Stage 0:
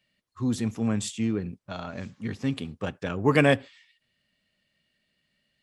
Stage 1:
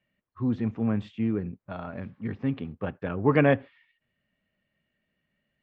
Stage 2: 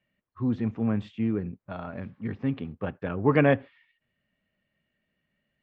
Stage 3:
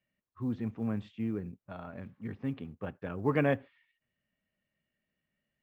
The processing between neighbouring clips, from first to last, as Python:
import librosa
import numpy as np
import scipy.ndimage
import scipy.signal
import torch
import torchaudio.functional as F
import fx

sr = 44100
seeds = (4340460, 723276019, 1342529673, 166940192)

y1 = scipy.signal.sosfilt(scipy.signal.bessel(4, 1800.0, 'lowpass', norm='mag', fs=sr, output='sos'), x)
y2 = y1
y3 = fx.quant_float(y2, sr, bits=6)
y3 = y3 * 10.0 ** (-7.0 / 20.0)